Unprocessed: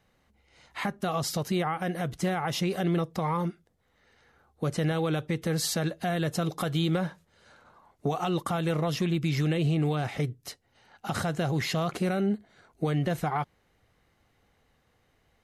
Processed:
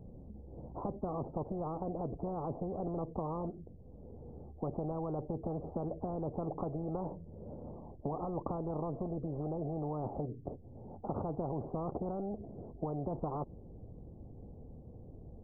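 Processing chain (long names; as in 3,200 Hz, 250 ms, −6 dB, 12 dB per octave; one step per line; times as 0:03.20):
Gaussian smoothing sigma 17 samples
every bin compressed towards the loudest bin 4 to 1
level −2 dB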